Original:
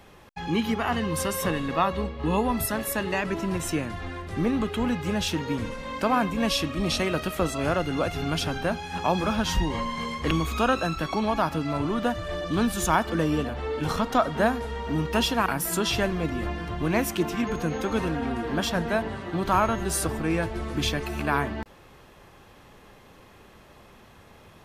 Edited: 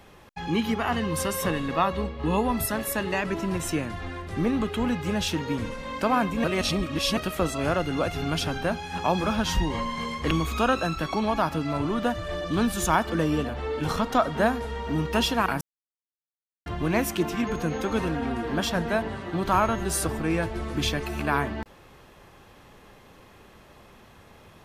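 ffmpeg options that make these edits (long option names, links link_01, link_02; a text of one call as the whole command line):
ffmpeg -i in.wav -filter_complex "[0:a]asplit=5[link_01][link_02][link_03][link_04][link_05];[link_01]atrim=end=6.442[link_06];[link_02]atrim=start=6.438:end=7.172,asetpts=PTS-STARTPTS,areverse[link_07];[link_03]atrim=start=7.168:end=15.61,asetpts=PTS-STARTPTS,afade=type=out:start_time=8.438:duration=0.004:curve=hsin[link_08];[link_04]atrim=start=15.61:end=16.66,asetpts=PTS-STARTPTS,volume=0[link_09];[link_05]atrim=start=16.66,asetpts=PTS-STARTPTS,afade=type=in:duration=0.004:curve=hsin[link_10];[link_06][link_07]acrossfade=duration=0.004:curve1=hsin:curve2=hsin[link_11];[link_08][link_09][link_10]concat=n=3:v=0:a=1[link_12];[link_11][link_12]acrossfade=duration=0.004:curve1=hsin:curve2=hsin" out.wav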